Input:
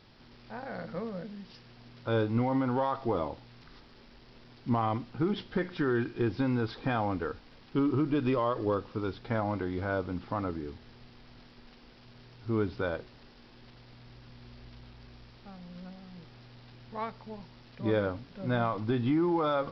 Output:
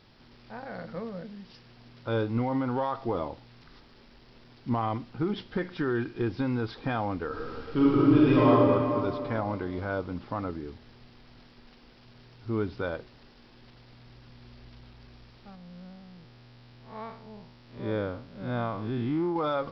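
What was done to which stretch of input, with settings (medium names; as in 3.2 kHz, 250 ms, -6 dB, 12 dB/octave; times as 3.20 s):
7.27–8.50 s: reverb throw, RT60 2.6 s, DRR -7 dB
15.55–19.36 s: spectral blur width 143 ms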